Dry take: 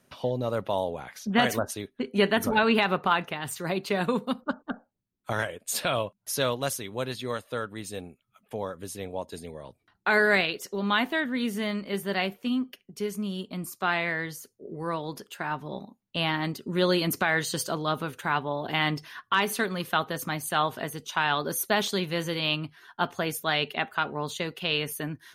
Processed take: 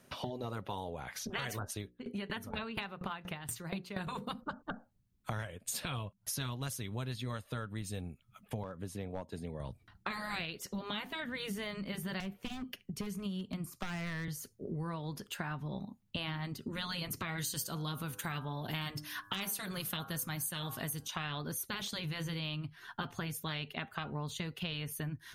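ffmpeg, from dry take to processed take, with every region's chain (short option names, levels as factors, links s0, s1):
-filter_complex "[0:a]asettb=1/sr,asplit=3[s0][s1][s2];[s0]atrim=end=1.824[s3];[s1]atrim=start=1.82:end=4.07,asetpts=PTS-STARTPTS,afade=t=in:d=0.004:c=qsin,afade=t=out:st=2.246:d=0.004:c=qsin,bandreject=f=60:t=h:w=6,bandreject=f=120:t=h:w=6,bandreject=f=180:t=h:w=6,bandreject=f=240:t=h:w=6,bandreject=f=300:t=h:w=6,bandreject=f=360:t=h:w=6,bandreject=f=420:t=h:w=6,bandreject=f=480:t=h:w=6,bandreject=f=540:t=h:w=6,aeval=exprs='val(0)*pow(10,-20*if(lt(mod(4.2*n/s,1),2*abs(4.2)/1000),1-mod(4.2*n/s,1)/(2*abs(4.2)/1000),(mod(4.2*n/s,1)-2*abs(4.2)/1000)/(1-2*abs(4.2)/1000))/20)':c=same[s4];[s2]atrim=start=4.066[s5];[s3][s4]acrossfade=d=0.004:c1=hsin:c2=qsin[s6];[s6][s5]acrossfade=d=0.004:c1=qsin:c2=hsin,asettb=1/sr,asplit=3[s7][s8][s9];[s7]atrim=end=8.634[s10];[s8]atrim=start=8.63:end=9.6,asetpts=PTS-STARTPTS,afade=t=in:d=0.004:c=qsin,afade=t=out:st=0.966:d=0.004:c=qsin,highpass=f=220:p=1,highshelf=f=2400:g=-12,aeval=exprs='clip(val(0),-1,0.0355)':c=same[s11];[s9]atrim=start=9.596[s12];[s10][s11]acrossfade=d=0.004:c1=hsin:c2=qsin[s13];[s13][s12]acrossfade=d=0.004:c1=qsin:c2=hsin,asettb=1/sr,asplit=3[s14][s15][s16];[s14]atrim=end=12.204[s17];[s15]atrim=start=12.2:end=14.28,asetpts=PTS-STARTPTS,afade=t=in:d=0.004:c=qsin,afade=t=out:st=2.076:d=0.004:c=qsin,acrossover=split=280|2700[s18][s19][s20];[s18]acompressor=threshold=0.0158:ratio=4[s21];[s19]acompressor=threshold=0.0224:ratio=4[s22];[s20]acompressor=threshold=0.00501:ratio=4[s23];[s21][s22][s23]amix=inputs=3:normalize=0,aeval=exprs='0.0398*(abs(mod(val(0)/0.0398+3,4)-2)-1)':c=same[s24];[s16]atrim=start=14.276[s25];[s17][s24]acrossfade=d=0.004:c1=hsin:c2=qsin[s26];[s26][s25]acrossfade=d=0.004:c1=qsin:c2=hsin,asettb=1/sr,asplit=3[s27][s28][s29];[s27]atrim=end=17.384[s30];[s28]atrim=start=17.38:end=21.08,asetpts=PTS-STARTPTS,afade=t=in:d=0.004:c=qsin,afade=t=out:st=3.696:d=0.004:c=qsin,equalizer=f=13000:t=o:w=1.7:g=15,bandreject=f=99.91:t=h:w=4,bandreject=f=199.82:t=h:w=4,bandreject=f=299.73:t=h:w=4,bandreject=f=399.64:t=h:w=4,bandreject=f=499.55:t=h:w=4,bandreject=f=599.46:t=h:w=4,bandreject=f=699.37:t=h:w=4,bandreject=f=799.28:t=h:w=4,bandreject=f=899.19:t=h:w=4,bandreject=f=999.1:t=h:w=4,bandreject=f=1099.01:t=h:w=4,bandreject=f=1198.92:t=h:w=4,bandreject=f=1298.83:t=h:w=4,bandreject=f=1398.74:t=h:w=4,bandreject=f=1498.65:t=h:w=4,bandreject=f=1598.56:t=h:w=4,bandreject=f=1698.47:t=h:w=4[s31];[s29]atrim=start=21.076[s32];[s30][s31]acrossfade=d=0.004:c1=hsin:c2=qsin[s33];[s33][s32]acrossfade=d=0.004:c1=qsin:c2=hsin,afftfilt=real='re*lt(hypot(re,im),0.251)':imag='im*lt(hypot(re,im),0.251)':win_size=1024:overlap=0.75,asubboost=boost=4.5:cutoff=170,acompressor=threshold=0.0112:ratio=6,volume=1.33"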